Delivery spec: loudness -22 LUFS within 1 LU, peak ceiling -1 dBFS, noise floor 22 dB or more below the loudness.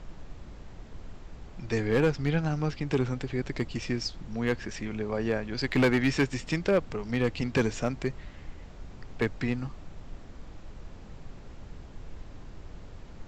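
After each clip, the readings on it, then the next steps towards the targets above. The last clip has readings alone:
clipped 0.4%; flat tops at -17.5 dBFS; noise floor -47 dBFS; noise floor target -52 dBFS; loudness -29.5 LUFS; peak -17.5 dBFS; loudness target -22.0 LUFS
-> clip repair -17.5 dBFS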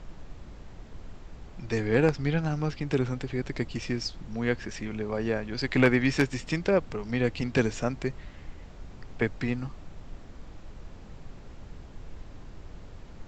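clipped 0.0%; noise floor -47 dBFS; noise floor target -51 dBFS
-> noise print and reduce 6 dB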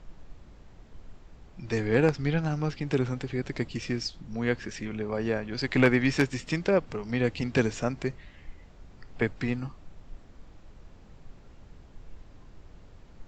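noise floor -52 dBFS; loudness -28.5 LUFS; peak -8.5 dBFS; loudness target -22.0 LUFS
-> gain +6.5 dB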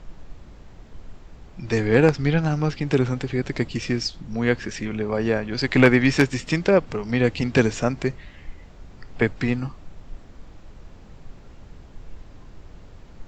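loudness -22.0 LUFS; peak -2.0 dBFS; noise floor -46 dBFS

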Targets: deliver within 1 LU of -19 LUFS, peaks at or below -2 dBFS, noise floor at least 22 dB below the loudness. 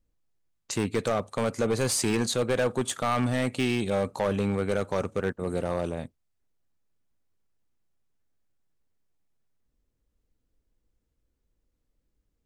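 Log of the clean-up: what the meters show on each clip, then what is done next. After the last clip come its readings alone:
clipped 1.6%; flat tops at -19.5 dBFS; loudness -28.0 LUFS; peak -19.5 dBFS; loudness target -19.0 LUFS
-> clip repair -19.5 dBFS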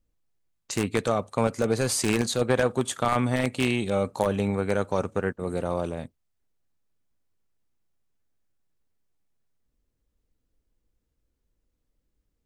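clipped 0.0%; loudness -26.5 LUFS; peak -10.5 dBFS; loudness target -19.0 LUFS
-> gain +7.5 dB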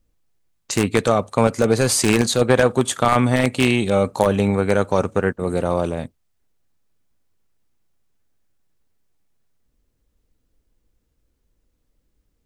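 loudness -19.0 LUFS; peak -3.0 dBFS; noise floor -70 dBFS

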